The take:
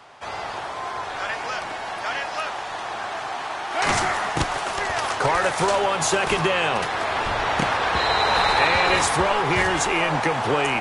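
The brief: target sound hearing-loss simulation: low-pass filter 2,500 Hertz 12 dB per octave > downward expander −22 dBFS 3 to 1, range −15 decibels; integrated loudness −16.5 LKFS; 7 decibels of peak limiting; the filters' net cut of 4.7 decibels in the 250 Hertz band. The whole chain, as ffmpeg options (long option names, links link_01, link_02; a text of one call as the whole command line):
ffmpeg -i in.wav -af "equalizer=frequency=250:width_type=o:gain=-8,alimiter=limit=-13.5dB:level=0:latency=1,lowpass=2500,agate=range=-15dB:threshold=-22dB:ratio=3,volume=8.5dB" out.wav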